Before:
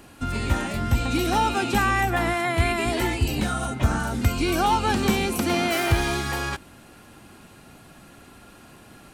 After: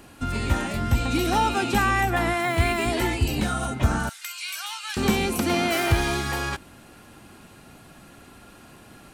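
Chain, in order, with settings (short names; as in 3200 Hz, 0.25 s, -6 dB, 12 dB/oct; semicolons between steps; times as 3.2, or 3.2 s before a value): 2.41–2.87 requantised 8-bit, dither triangular; 4.09–4.97 Bessel high-pass 2200 Hz, order 4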